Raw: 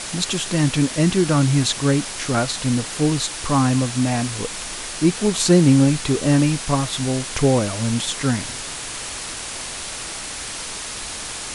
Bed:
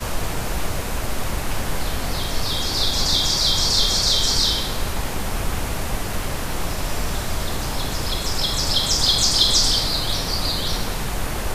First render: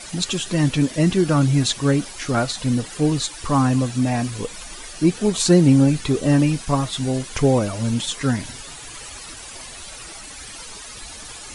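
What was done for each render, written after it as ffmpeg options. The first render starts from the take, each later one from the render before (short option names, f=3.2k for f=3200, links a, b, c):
-af "afftdn=nr=12:nf=-31"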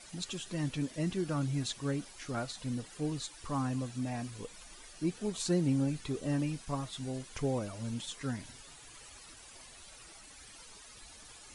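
-af "volume=-16dB"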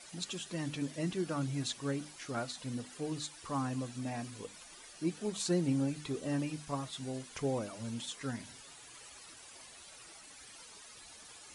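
-af "highpass=f=140:p=1,bandreject=f=50:t=h:w=6,bandreject=f=100:t=h:w=6,bandreject=f=150:t=h:w=6,bandreject=f=200:t=h:w=6,bandreject=f=250:t=h:w=6,bandreject=f=300:t=h:w=6"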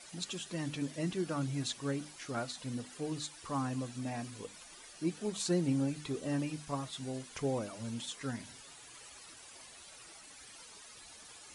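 -af anull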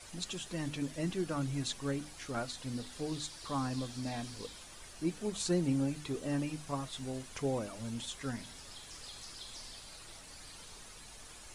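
-filter_complex "[1:a]volume=-32.5dB[a];[0:a][a]amix=inputs=2:normalize=0"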